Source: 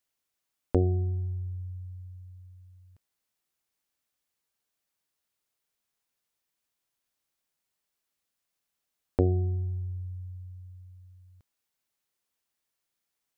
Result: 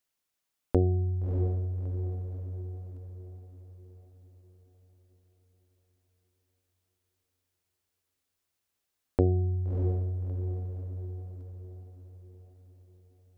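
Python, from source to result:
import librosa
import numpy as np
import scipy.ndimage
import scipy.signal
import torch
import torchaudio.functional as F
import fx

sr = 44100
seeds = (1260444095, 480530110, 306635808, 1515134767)

y = fx.echo_diffused(x, sr, ms=638, feedback_pct=50, wet_db=-8.0)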